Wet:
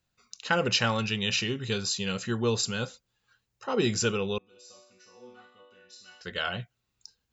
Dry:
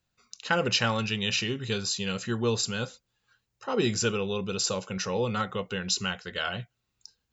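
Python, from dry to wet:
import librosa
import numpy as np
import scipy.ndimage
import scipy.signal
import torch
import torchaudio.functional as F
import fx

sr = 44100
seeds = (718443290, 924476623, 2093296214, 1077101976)

y = fx.resonator_bank(x, sr, root=59, chord='minor', decay_s=0.77, at=(4.38, 6.21))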